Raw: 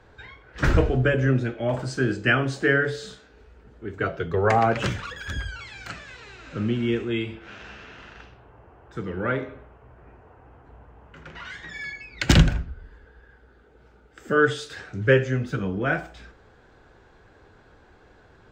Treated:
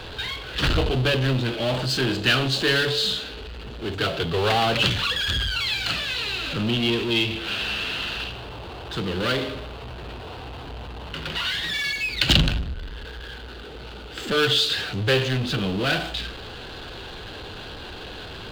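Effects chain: power-law waveshaper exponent 0.5; high-order bell 3.5 kHz +12.5 dB 1 oct; trim -9 dB

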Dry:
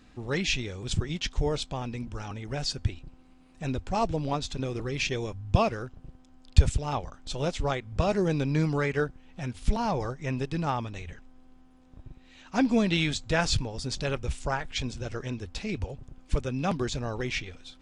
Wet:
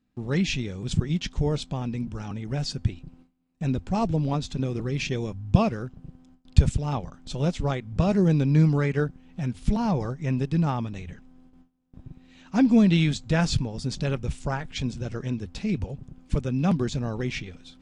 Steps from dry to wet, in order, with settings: gate with hold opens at -44 dBFS; peaking EQ 180 Hz +11 dB 1.5 oct; trim -2 dB

